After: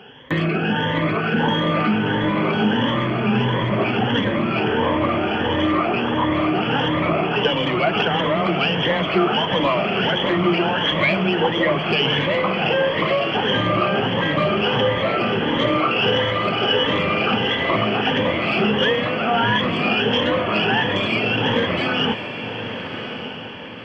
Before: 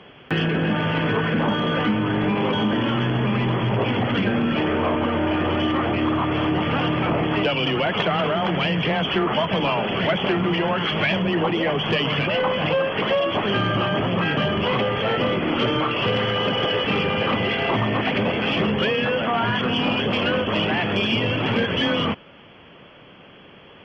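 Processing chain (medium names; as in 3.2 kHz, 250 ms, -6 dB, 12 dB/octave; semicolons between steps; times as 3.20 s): drifting ripple filter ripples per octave 1.1, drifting +1.5 Hz, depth 14 dB; bass shelf 110 Hz -5.5 dB; echo that smears into a reverb 1167 ms, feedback 42%, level -9 dB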